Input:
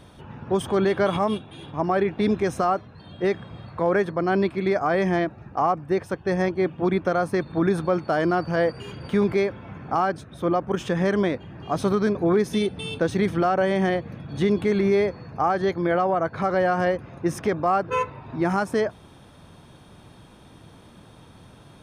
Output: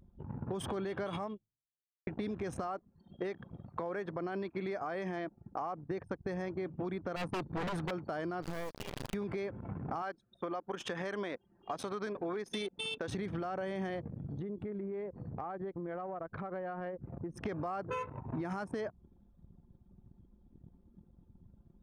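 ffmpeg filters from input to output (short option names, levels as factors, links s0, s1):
-filter_complex "[0:a]asettb=1/sr,asplit=3[s0][s1][s2];[s0]atrim=end=2.674[s3];[s1]atrim=start=2.67:end=5.91,asetpts=PTS-STARTPTS,afade=t=in:d=0.004:c=qsin,afade=t=out:st=3.236:d=0.004:c=qsin,highpass=f=200:p=1[s4];[s2]atrim=start=5.906[s5];[s3][s4]acrossfade=d=0.004:c1=hsin:c2=qsin[s6];[s6][s5]acrossfade=d=0.004:c1=qsin:c2=hsin,asettb=1/sr,asplit=3[s7][s8][s9];[s7]atrim=end=7.164[s10];[s8]atrim=start=7.16:end=7.91,asetpts=PTS-STARTPTS,afade=t=in:d=0.004:c=qsin,afade=t=out:st=0.746:d=0.004:c=qsin,aeval=exprs='0.075*(abs(mod(val(0)/0.075+3,4)-2)-1)':c=same[s11];[s9]atrim=start=7.906[s12];[s10][s11]acrossfade=d=0.004:c1=hsin:c2=qsin[s13];[s13][s12]acrossfade=d=0.004:c1=qsin:c2=hsin,asettb=1/sr,asplit=3[s14][s15][s16];[s14]atrim=end=8.424[s17];[s15]atrim=start=8.42:end=9.14,asetpts=PTS-STARTPTS,afade=t=in:d=0.004:c=qsin,afade=t=out:st=0.716:d=0.004:c=qsin,acrusher=bits=3:dc=4:mix=0:aa=0.000001[s18];[s16]atrim=start=9.136[s19];[s17][s18]acrossfade=d=0.004:c1=hsin:c2=qsin[s20];[s20][s19]acrossfade=d=0.004:c1=qsin:c2=hsin,asettb=1/sr,asplit=3[s21][s22][s23];[s21]atrim=end=10.024[s24];[s22]atrim=start=10.02:end=13.08,asetpts=PTS-STARTPTS,afade=t=in:d=0.004:c=qsin,afade=t=out:st=3.056:d=0.004:c=qsin,highpass=f=670:p=1[s25];[s23]atrim=start=13.076[s26];[s24][s25]acrossfade=d=0.004:c1=hsin:c2=qsin[s27];[s27][s26]acrossfade=d=0.004:c1=qsin:c2=hsin,asplit=3[s28][s29][s30];[s28]afade=t=out:st=14.08:d=0.02[s31];[s29]acompressor=threshold=0.0158:ratio=6:attack=3.2:release=140:knee=1:detection=peak,afade=t=in:st=14.08:d=0.02,afade=t=out:st=17.45:d=0.02[s32];[s30]afade=t=in:st=17.45:d=0.02[s33];[s31][s32][s33]amix=inputs=3:normalize=0,asplit=2[s34][s35];[s34]atrim=end=2.07,asetpts=PTS-STARTPTS,afade=t=out:st=1.24:d=0.83:c=exp[s36];[s35]atrim=start=2.07,asetpts=PTS-STARTPTS,afade=t=in:d=0.004:c=hsin[s37];[s36][s37]concat=n=2:v=0:a=1,anlmdn=1.58,alimiter=limit=0.0841:level=0:latency=1:release=99,acompressor=threshold=0.0178:ratio=5"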